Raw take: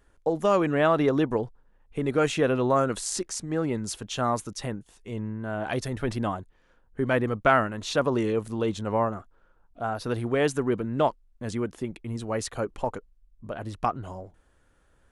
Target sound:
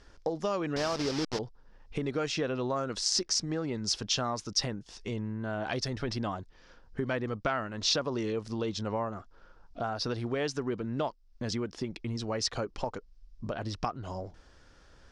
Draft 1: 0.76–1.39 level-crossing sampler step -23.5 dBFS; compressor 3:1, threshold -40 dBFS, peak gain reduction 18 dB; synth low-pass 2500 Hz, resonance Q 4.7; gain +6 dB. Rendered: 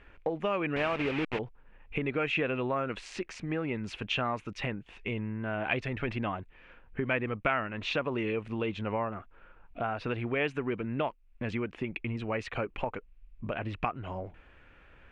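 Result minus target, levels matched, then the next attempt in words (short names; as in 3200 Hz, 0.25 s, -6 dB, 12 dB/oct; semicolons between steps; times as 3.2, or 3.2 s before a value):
4000 Hz band -7.5 dB
0.76–1.39 level-crossing sampler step -23.5 dBFS; compressor 3:1, threshold -40 dBFS, peak gain reduction 18 dB; synth low-pass 5200 Hz, resonance Q 4.7; gain +6 dB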